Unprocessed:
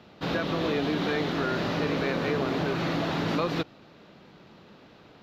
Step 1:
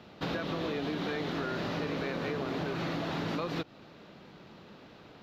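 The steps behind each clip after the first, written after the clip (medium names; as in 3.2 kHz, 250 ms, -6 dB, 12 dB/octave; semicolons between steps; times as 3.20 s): compression 5:1, threshold -31 dBFS, peak gain reduction 7.5 dB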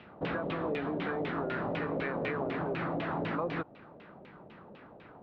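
LFO low-pass saw down 4 Hz 520–2800 Hz; trim -1.5 dB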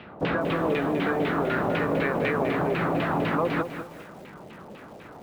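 bit-crushed delay 200 ms, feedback 35%, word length 9-bit, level -9 dB; trim +8 dB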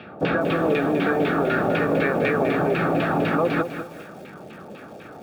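comb of notches 1 kHz; trim +4.5 dB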